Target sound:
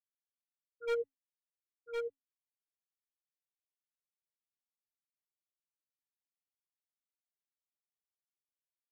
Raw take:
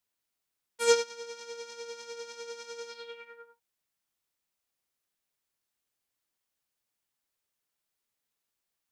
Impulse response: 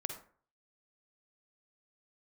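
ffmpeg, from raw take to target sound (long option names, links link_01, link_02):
-filter_complex "[0:a]highpass=48,aemphasis=mode=reproduction:type=50kf,bandreject=frequency=60:width_type=h:width=6,bandreject=frequency=120:width_type=h:width=6,bandreject=frequency=180:width_type=h:width=6,bandreject=frequency=240:width_type=h:width=6,bandreject=frequency=300:width_type=h:width=6,afftfilt=real='re*gte(hypot(re,im),0.158)':imag='im*gte(hypot(re,im),0.158)':win_size=1024:overlap=0.75,equalizer=frequency=100:width_type=o:width=0.67:gain=12,equalizer=frequency=250:width_type=o:width=0.67:gain=7,equalizer=frequency=630:width_type=o:width=0.67:gain=-10,equalizer=frequency=2500:width_type=o:width=0.67:gain=8,equalizer=frequency=10000:width_type=o:width=0.67:gain=-11,acrossover=split=200|1400[link_01][link_02][link_03];[link_01]acontrast=55[link_04];[link_04][link_02][link_03]amix=inputs=3:normalize=0,asoftclip=type=hard:threshold=-26.5dB,tremolo=f=1.9:d=0.86,flanger=delay=0:depth=4.7:regen=89:speed=0.35:shape=triangular,asplit=2[link_05][link_06];[link_06]aecho=0:1:1059:0.631[link_07];[link_05][link_07]amix=inputs=2:normalize=0,volume=6dB"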